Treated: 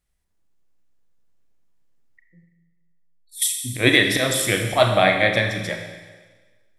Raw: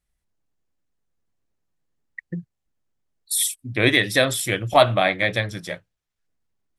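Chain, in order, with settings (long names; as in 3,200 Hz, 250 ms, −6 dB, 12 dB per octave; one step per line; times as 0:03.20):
volume swells 101 ms
0:02.21–0:03.42: tuned comb filter 260 Hz, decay 0.37 s, harmonics all, mix 90%
four-comb reverb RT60 1.4 s, combs from 32 ms, DRR 4 dB
level +2 dB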